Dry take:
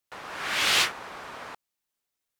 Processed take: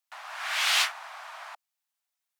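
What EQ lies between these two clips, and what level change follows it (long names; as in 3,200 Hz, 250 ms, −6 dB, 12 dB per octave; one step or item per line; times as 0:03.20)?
Butterworth high-pass 630 Hz 72 dB per octave
−1.5 dB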